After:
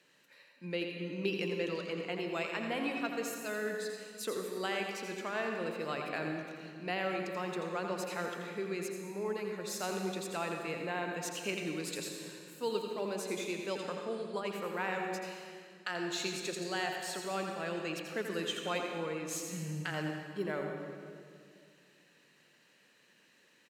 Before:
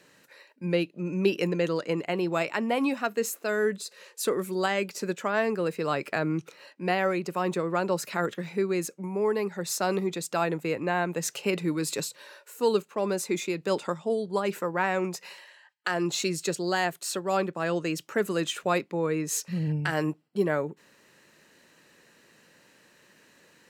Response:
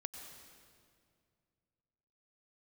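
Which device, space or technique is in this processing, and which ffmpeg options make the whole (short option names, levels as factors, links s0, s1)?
PA in a hall: -filter_complex "[0:a]highpass=120,equalizer=f=3000:t=o:w=1.2:g=6.5,aecho=1:1:84:0.398[s0];[1:a]atrim=start_sample=2205[s1];[s0][s1]afir=irnorm=-1:irlink=0,volume=0.422"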